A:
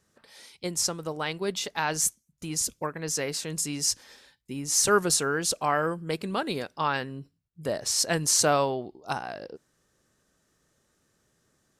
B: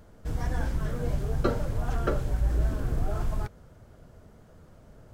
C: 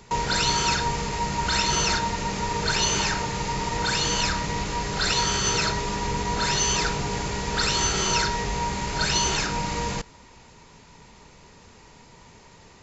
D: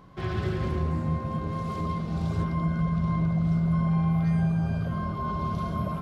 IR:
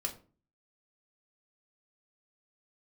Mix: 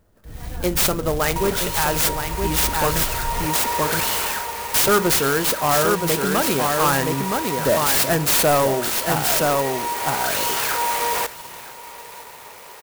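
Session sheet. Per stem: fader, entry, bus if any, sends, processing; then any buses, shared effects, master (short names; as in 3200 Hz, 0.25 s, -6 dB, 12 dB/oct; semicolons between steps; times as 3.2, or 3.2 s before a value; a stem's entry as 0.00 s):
-4.0 dB, 0.00 s, muted 3.03–4.74, send -9.5 dB, echo send -4 dB, AGC gain up to 6.5 dB
-8.0 dB, 0.00 s, no send, no echo send, dry
-1.5 dB, 1.25 s, no send, echo send -20.5 dB, limiter -19.5 dBFS, peak gain reduction 10 dB; inverse Chebyshev high-pass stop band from 180 Hz, stop band 50 dB; soft clip -26.5 dBFS, distortion -16 dB
-18.0 dB, 1.60 s, no send, no echo send, fixed phaser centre 620 Hz, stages 6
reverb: on, RT60 0.40 s, pre-delay 3 ms
echo: echo 0.97 s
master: AGC gain up to 14 dB; soft clip -11.5 dBFS, distortion -13 dB; clock jitter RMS 0.058 ms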